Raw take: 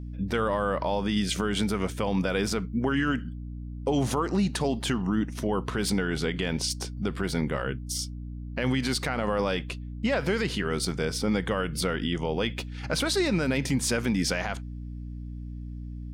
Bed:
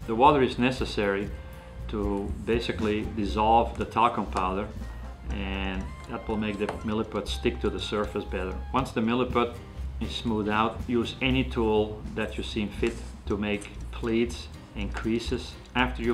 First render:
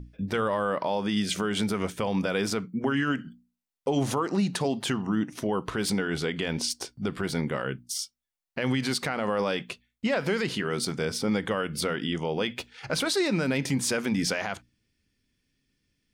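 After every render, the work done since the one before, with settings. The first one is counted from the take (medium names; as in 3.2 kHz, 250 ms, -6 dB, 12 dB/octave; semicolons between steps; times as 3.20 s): hum notches 60/120/180/240/300 Hz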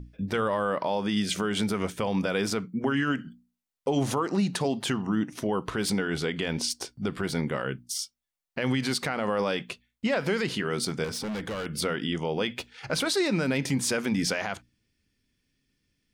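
11.04–11.66 s: hard clipper -30 dBFS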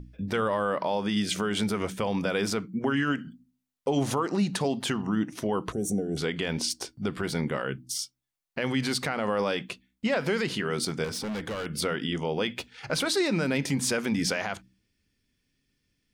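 5.72–6.17 s: time-frequency box 780–5500 Hz -27 dB; de-hum 63.57 Hz, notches 5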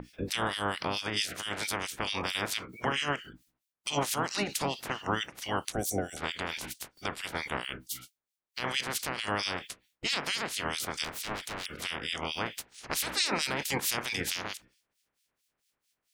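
spectral peaks clipped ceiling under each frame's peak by 30 dB; harmonic tremolo 4.5 Hz, depth 100%, crossover 2.1 kHz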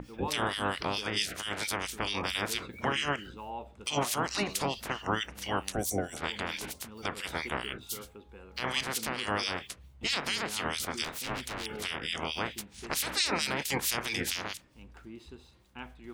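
add bed -19.5 dB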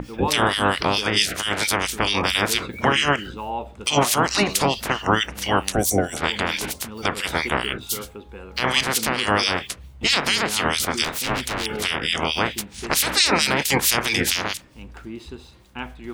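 trim +11.5 dB; peak limiter -3 dBFS, peak gain reduction 1 dB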